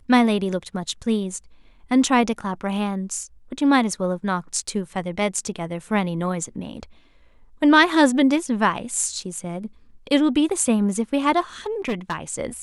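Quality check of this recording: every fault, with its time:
0:11.66–0:12.15: clipping −19.5 dBFS

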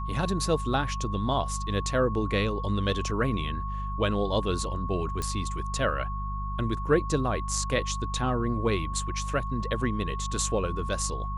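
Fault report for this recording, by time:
mains hum 50 Hz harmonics 4 −33 dBFS
whistle 1,100 Hz −35 dBFS
0:05.22: click −17 dBFS

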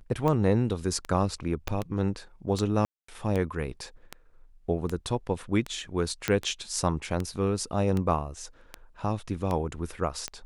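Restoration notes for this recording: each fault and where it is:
scratch tick 78 rpm −17 dBFS
0:01.68: click −15 dBFS
0:02.85–0:03.08: drop-out 234 ms
0:06.28: click −10 dBFS

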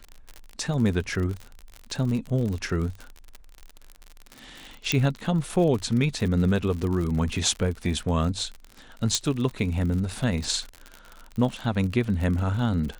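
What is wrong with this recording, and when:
surface crackle 55 per second −30 dBFS
0:04.92: click −8 dBFS
0:09.15: click

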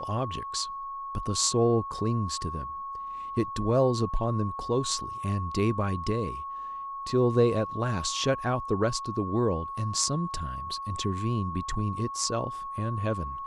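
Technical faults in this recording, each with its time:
whistle 1,100 Hz −34 dBFS

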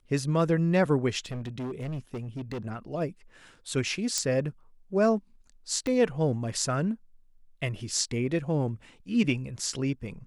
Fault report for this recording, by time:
0:01.26–0:02.66: clipping −31 dBFS
0:04.18: click −13 dBFS
0:05.87: click −19 dBFS

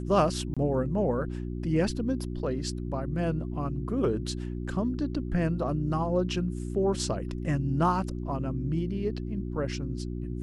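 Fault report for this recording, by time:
mains hum 60 Hz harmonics 6 −34 dBFS
0:00.54–0:00.57: drop-out 26 ms

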